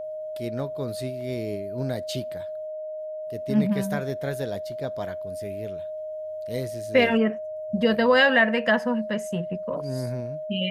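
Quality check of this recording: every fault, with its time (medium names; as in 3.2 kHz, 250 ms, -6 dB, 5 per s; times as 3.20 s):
whine 620 Hz -31 dBFS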